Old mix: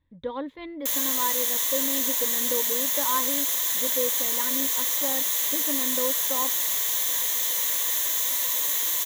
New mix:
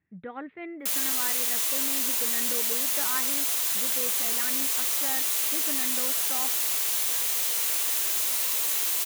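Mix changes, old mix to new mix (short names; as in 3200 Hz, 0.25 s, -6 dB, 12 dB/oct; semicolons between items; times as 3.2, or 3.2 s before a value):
speech: add speaker cabinet 140–2500 Hz, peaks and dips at 170 Hz +7 dB, 240 Hz -4 dB, 520 Hz -7 dB, 970 Hz -8 dB, 1900 Hz +9 dB; master: remove ripple EQ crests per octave 1.1, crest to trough 10 dB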